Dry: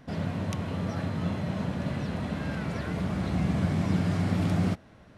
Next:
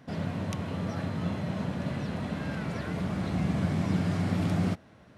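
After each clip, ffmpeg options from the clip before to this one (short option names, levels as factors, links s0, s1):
-af "highpass=76,volume=0.891"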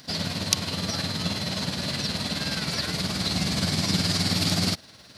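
-af "equalizer=f=4500:w=1.9:g=14.5,crystalizer=i=6:c=0,tremolo=f=19:d=0.47,volume=1.33"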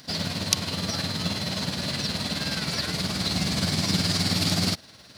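-af "acrusher=bits=7:mode=log:mix=0:aa=0.000001"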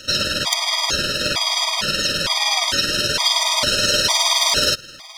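-filter_complex "[0:a]asplit=2[s0][s1];[s1]highpass=f=720:p=1,volume=10,asoftclip=type=tanh:threshold=0.841[s2];[s0][s2]amix=inputs=2:normalize=0,lowpass=f=7700:p=1,volume=0.501,aeval=exprs='val(0)*sin(2*PI*780*n/s)':c=same,afftfilt=real='re*gt(sin(2*PI*1.1*pts/sr)*(1-2*mod(floor(b*sr/1024/630),2)),0)':imag='im*gt(sin(2*PI*1.1*pts/sr)*(1-2*mod(floor(b*sr/1024/630),2)),0)':win_size=1024:overlap=0.75,volume=1.58"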